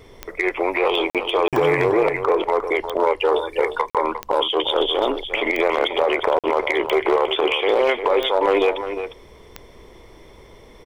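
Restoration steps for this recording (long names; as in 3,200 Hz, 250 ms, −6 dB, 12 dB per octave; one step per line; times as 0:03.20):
clipped peaks rebuilt −9 dBFS
click removal
repair the gap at 0:01.10/0:01.48/0:03.90/0:06.39, 47 ms
echo removal 354 ms −9.5 dB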